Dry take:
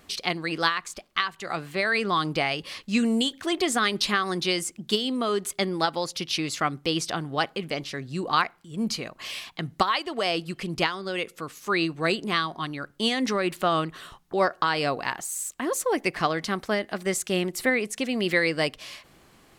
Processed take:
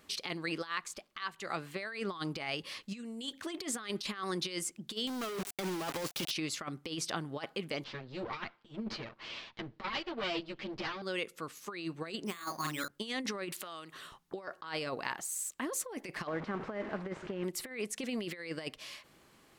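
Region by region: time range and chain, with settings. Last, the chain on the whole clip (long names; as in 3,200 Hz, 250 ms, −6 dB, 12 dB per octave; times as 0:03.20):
0:05.07–0:06.31: de-essing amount 95% + log-companded quantiser 2 bits
0:07.84–0:11.02: lower of the sound and its delayed copy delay 8.8 ms + low-pass filter 4,500 Hz 24 dB per octave
0:12.26–0:12.88: parametric band 4,500 Hz +10 dB 2.2 octaves + double-tracking delay 46 ms −4.5 dB + bad sample-rate conversion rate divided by 8×, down filtered, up hold
0:13.52–0:13.94: high-pass filter 310 Hz 6 dB per octave + downward compressor 4 to 1, threshold −39 dBFS + high-shelf EQ 3,100 Hz +10.5 dB
0:16.27–0:17.44: linear delta modulator 64 kbit/s, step −27 dBFS + low-pass filter 1,500 Hz
whole clip: low-shelf EQ 94 Hz −8.5 dB; notch filter 720 Hz, Q 12; compressor whose output falls as the input rises −28 dBFS, ratio −0.5; level −8.5 dB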